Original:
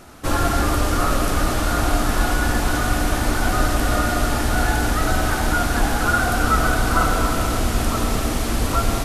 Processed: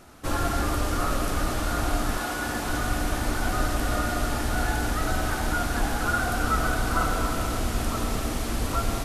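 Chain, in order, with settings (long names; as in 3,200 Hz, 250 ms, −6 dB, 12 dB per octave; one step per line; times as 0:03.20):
0:02.17–0:02.67: high-pass filter 310 Hz → 110 Hz 6 dB per octave
level −6.5 dB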